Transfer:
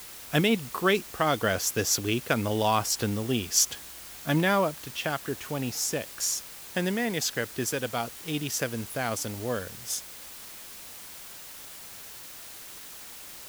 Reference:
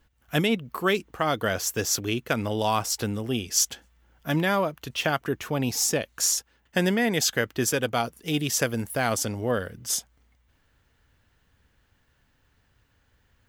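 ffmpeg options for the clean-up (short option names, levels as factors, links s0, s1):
-af "afwtdn=0.0063,asetnsamples=n=441:p=0,asendcmd='4.82 volume volume 5dB',volume=1"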